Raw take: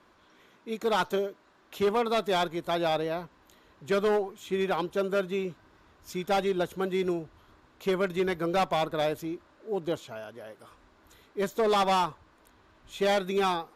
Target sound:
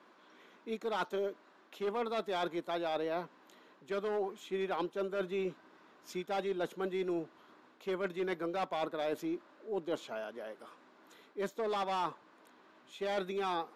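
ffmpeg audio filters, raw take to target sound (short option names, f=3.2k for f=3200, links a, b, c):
-af "highpass=f=200:w=0.5412,highpass=f=200:w=1.3066,highshelf=f=6.8k:g=-10,areverse,acompressor=threshold=-32dB:ratio=6,areverse,aeval=exprs='0.0944*(cos(1*acos(clip(val(0)/0.0944,-1,1)))-cos(1*PI/2))+0.00422*(cos(2*acos(clip(val(0)/0.0944,-1,1)))-cos(2*PI/2))':c=same"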